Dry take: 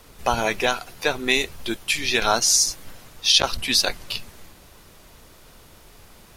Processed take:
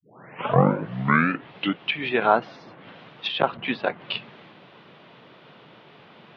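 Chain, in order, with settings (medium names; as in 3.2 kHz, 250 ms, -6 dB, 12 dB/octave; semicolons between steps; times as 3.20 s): tape start-up on the opening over 1.96 s; low-pass that closes with the level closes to 1.5 kHz, closed at -20 dBFS; elliptic band-pass 140–3300 Hz, stop band 40 dB; trim +3.5 dB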